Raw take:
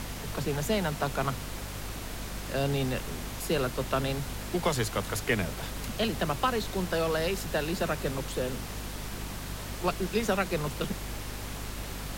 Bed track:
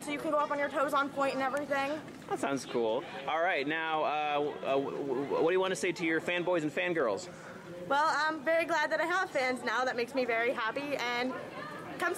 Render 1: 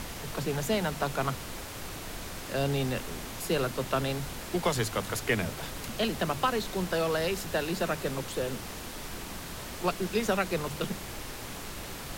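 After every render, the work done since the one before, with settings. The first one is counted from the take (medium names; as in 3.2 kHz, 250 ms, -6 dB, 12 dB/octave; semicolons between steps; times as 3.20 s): de-hum 50 Hz, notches 5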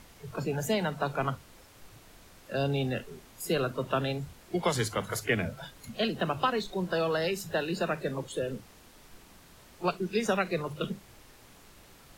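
noise print and reduce 15 dB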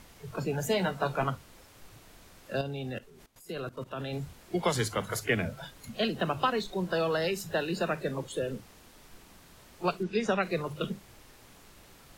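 0.69–1.24 s: doubling 16 ms -6 dB; 2.61–4.13 s: level held to a coarse grid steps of 18 dB; 10.03–10.43 s: distance through air 74 m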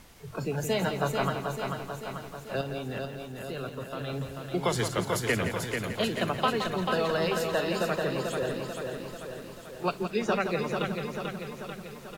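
feedback delay 440 ms, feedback 59%, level -5 dB; bit-crushed delay 169 ms, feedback 35%, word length 9-bit, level -8.5 dB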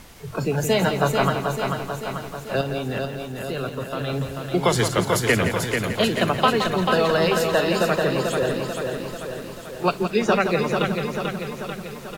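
trim +8 dB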